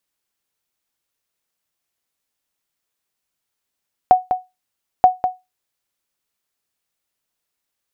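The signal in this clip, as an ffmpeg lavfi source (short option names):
-f lavfi -i "aevalsrc='0.841*(sin(2*PI*738*mod(t,0.93))*exp(-6.91*mod(t,0.93)/0.21)+0.376*sin(2*PI*738*max(mod(t,0.93)-0.2,0))*exp(-6.91*max(mod(t,0.93)-0.2,0)/0.21))':d=1.86:s=44100"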